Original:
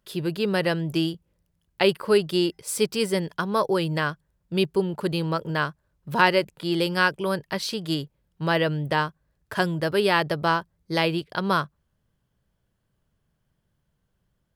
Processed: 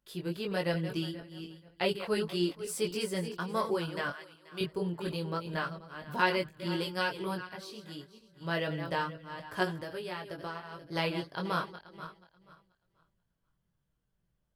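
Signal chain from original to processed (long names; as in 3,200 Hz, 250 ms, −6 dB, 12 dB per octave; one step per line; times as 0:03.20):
feedback delay that plays each chunk backwards 241 ms, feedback 45%, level −10.5 dB
0:04.10–0:04.61: high-pass filter 920 Hz 6 dB per octave
0:09.79–0:10.96: downward compressor 4 to 1, threshold −28 dBFS, peak gain reduction 10.5 dB
multi-voice chorus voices 6, 0.28 Hz, delay 20 ms, depth 3.9 ms
0:07.30–0:08.54: duck −8 dB, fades 0.13 s
level −6 dB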